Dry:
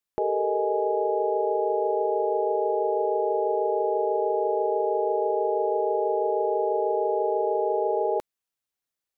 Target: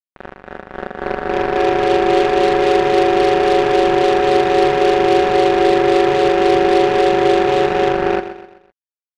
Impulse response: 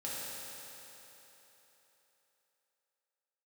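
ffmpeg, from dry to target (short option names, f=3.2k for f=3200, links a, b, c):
-filter_complex "[0:a]tremolo=f=3.7:d=0.3,dynaudnorm=f=210:g=13:m=11.5dB,acrusher=bits=2:mix=0:aa=0.5,asetrate=39289,aresample=44100,atempo=1.12246,asplit=2[a][b];[b]aecho=0:1:127|254|381|508:0.251|0.108|0.0464|0.02[c];[a][c]amix=inputs=2:normalize=0,volume=1dB"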